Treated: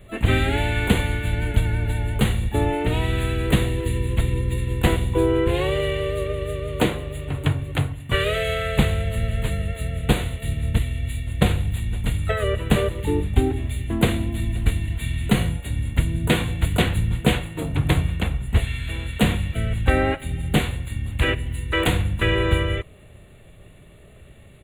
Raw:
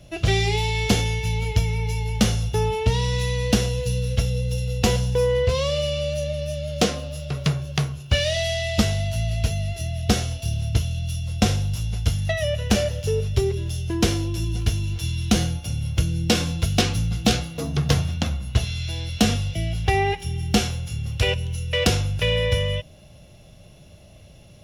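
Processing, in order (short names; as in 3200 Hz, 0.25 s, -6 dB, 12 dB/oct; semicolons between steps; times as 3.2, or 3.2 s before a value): harmoniser -7 st 0 dB, -4 st -6 dB, +12 st -11 dB; Butterworth band-stop 5400 Hz, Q 1.2; gain -2.5 dB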